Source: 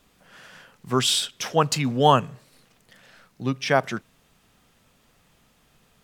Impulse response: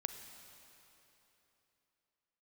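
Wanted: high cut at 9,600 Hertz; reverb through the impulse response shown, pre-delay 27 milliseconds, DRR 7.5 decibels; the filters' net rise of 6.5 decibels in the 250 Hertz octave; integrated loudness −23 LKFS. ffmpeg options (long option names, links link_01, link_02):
-filter_complex "[0:a]lowpass=9600,equalizer=frequency=250:width_type=o:gain=7.5,asplit=2[link_01][link_02];[1:a]atrim=start_sample=2205,adelay=27[link_03];[link_02][link_03]afir=irnorm=-1:irlink=0,volume=-6.5dB[link_04];[link_01][link_04]amix=inputs=2:normalize=0,volume=-3dB"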